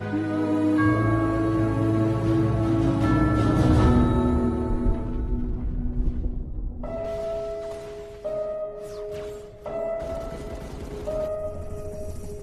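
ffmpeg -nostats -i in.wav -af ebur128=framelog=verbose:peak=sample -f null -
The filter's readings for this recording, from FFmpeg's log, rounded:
Integrated loudness:
  I:         -25.2 LUFS
  Threshold: -35.6 LUFS
Loudness range:
  LRA:        10.9 LU
  Threshold: -45.7 LUFS
  LRA low:   -32.7 LUFS
  LRA high:  -21.8 LUFS
Sample peak:
  Peak:       -9.5 dBFS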